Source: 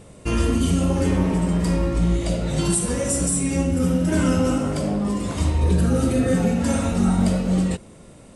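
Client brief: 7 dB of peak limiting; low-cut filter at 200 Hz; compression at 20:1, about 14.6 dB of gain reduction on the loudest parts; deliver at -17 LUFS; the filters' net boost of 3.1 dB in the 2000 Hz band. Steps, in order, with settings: HPF 200 Hz; bell 2000 Hz +4 dB; compressor 20:1, threshold -32 dBFS; gain +21.5 dB; limiter -8 dBFS

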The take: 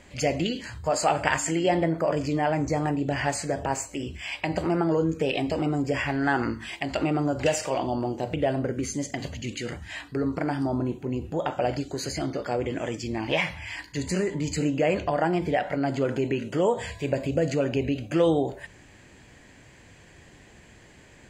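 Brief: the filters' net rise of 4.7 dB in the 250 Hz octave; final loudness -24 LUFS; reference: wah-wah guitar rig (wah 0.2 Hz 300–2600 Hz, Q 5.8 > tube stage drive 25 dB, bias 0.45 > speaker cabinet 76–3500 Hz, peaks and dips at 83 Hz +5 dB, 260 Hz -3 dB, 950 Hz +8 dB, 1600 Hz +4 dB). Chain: bell 250 Hz +8 dB; wah 0.2 Hz 300–2600 Hz, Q 5.8; tube stage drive 25 dB, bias 0.45; speaker cabinet 76–3500 Hz, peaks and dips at 83 Hz +5 dB, 260 Hz -3 dB, 950 Hz +8 dB, 1600 Hz +4 dB; gain +15 dB

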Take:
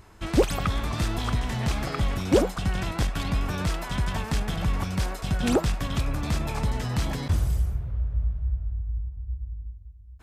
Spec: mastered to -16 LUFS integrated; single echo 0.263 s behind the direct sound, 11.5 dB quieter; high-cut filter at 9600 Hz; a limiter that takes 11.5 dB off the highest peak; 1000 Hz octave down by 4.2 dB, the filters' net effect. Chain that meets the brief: LPF 9600 Hz; bell 1000 Hz -5.5 dB; limiter -20 dBFS; echo 0.263 s -11.5 dB; gain +14 dB

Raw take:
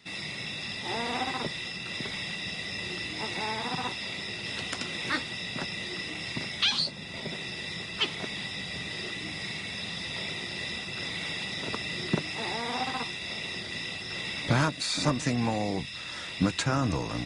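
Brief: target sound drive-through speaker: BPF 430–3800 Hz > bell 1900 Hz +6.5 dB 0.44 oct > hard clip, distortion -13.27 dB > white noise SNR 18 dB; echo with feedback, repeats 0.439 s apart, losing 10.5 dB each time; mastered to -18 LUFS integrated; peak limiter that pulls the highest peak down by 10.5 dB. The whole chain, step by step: limiter -22 dBFS; BPF 430–3800 Hz; bell 1900 Hz +6.5 dB 0.44 oct; feedback echo 0.439 s, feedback 30%, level -10.5 dB; hard clip -30.5 dBFS; white noise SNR 18 dB; gain +15.5 dB

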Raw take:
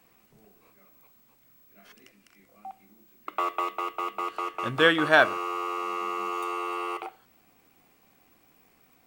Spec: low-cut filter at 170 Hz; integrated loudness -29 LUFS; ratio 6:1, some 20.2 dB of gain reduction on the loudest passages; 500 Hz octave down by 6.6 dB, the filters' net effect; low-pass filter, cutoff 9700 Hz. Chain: HPF 170 Hz; LPF 9700 Hz; bell 500 Hz -8.5 dB; compressor 6:1, threshold -38 dBFS; gain +12.5 dB

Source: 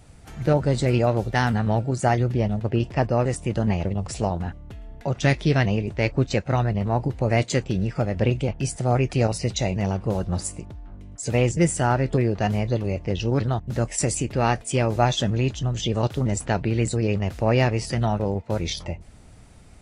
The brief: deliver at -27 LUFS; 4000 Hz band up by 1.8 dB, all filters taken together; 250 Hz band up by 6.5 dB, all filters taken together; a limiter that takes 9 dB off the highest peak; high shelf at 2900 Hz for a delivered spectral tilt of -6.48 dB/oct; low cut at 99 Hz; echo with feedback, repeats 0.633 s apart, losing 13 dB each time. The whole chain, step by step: HPF 99 Hz; bell 250 Hz +8.5 dB; high shelf 2900 Hz -4 dB; bell 4000 Hz +5.5 dB; limiter -12 dBFS; feedback echo 0.633 s, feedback 22%, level -13 dB; gain -3 dB

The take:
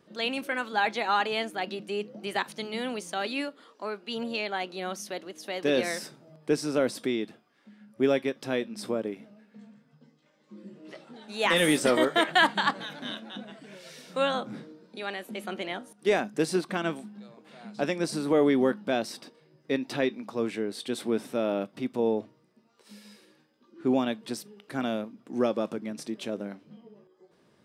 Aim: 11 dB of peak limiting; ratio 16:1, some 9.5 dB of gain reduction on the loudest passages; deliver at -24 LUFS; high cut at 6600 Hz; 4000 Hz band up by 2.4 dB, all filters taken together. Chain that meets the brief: LPF 6600 Hz; bell 4000 Hz +3.5 dB; compressor 16:1, threshold -27 dBFS; gain +13 dB; limiter -12 dBFS

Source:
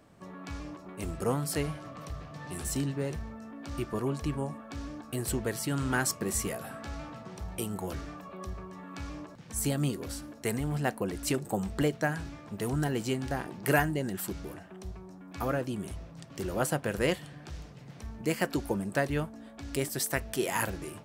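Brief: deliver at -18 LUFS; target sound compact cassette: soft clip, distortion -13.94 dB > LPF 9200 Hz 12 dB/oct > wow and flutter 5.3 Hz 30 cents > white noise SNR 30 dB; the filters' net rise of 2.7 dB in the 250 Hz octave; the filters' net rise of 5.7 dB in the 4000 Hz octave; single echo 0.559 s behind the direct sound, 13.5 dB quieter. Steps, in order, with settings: bell 250 Hz +3.5 dB; bell 4000 Hz +8 dB; echo 0.559 s -13.5 dB; soft clip -22 dBFS; LPF 9200 Hz 12 dB/oct; wow and flutter 5.3 Hz 30 cents; white noise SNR 30 dB; gain +15.5 dB

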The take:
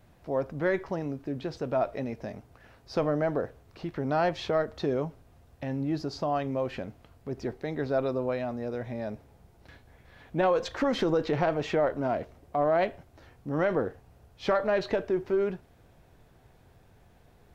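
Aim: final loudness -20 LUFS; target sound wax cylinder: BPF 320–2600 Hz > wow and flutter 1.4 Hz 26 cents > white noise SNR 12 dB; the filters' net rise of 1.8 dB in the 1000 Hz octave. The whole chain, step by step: BPF 320–2600 Hz; bell 1000 Hz +3 dB; wow and flutter 1.4 Hz 26 cents; white noise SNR 12 dB; gain +11 dB

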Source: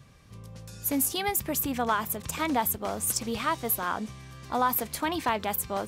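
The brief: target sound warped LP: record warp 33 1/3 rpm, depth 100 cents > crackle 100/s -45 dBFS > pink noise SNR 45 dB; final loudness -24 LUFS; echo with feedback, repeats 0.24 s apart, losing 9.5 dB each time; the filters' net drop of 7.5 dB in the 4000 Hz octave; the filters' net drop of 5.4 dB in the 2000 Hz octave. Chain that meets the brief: bell 2000 Hz -5.5 dB; bell 4000 Hz -8.5 dB; feedback echo 0.24 s, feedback 33%, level -9.5 dB; record warp 33 1/3 rpm, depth 100 cents; crackle 100/s -45 dBFS; pink noise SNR 45 dB; gain +5 dB

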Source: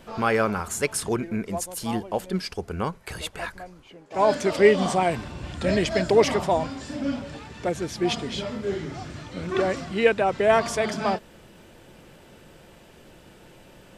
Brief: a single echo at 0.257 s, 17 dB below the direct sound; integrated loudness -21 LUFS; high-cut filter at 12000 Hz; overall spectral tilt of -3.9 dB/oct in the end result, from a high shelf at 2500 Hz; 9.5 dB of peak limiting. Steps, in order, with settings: LPF 12000 Hz; high shelf 2500 Hz +4.5 dB; limiter -13.5 dBFS; echo 0.257 s -17 dB; gain +5.5 dB

